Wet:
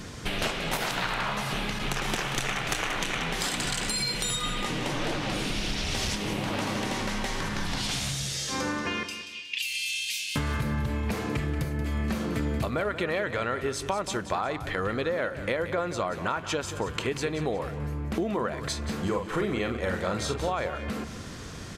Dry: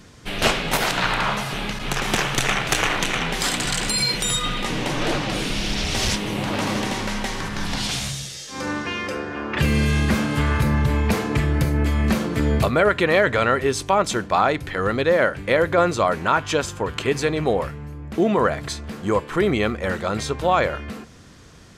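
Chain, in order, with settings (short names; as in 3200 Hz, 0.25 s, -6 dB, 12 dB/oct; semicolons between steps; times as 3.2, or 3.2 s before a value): 9.03–10.36 elliptic high-pass 2600 Hz, stop band 50 dB; compressor 5:1, threshold -35 dBFS, peak gain reduction 19.5 dB; 19.02–20.49 doubler 44 ms -6 dB; feedback echo 0.182 s, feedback 35%, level -12 dB; gain +6.5 dB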